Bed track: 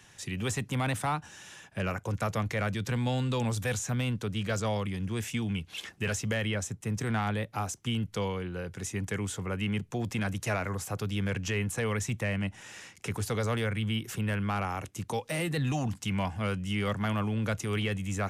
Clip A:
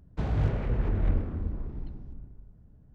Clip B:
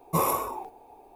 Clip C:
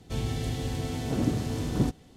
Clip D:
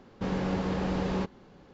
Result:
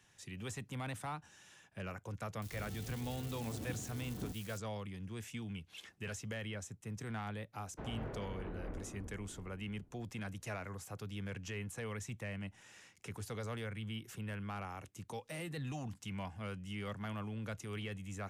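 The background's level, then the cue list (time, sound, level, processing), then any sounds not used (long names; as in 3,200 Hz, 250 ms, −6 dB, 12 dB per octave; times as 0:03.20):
bed track −12 dB
0:02.42: mix in C −17.5 dB + spike at every zero crossing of −25 dBFS
0:07.60: mix in A −8.5 dB + three-way crossover with the lows and the highs turned down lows −12 dB, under 240 Hz, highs −14 dB, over 2,500 Hz
not used: B, D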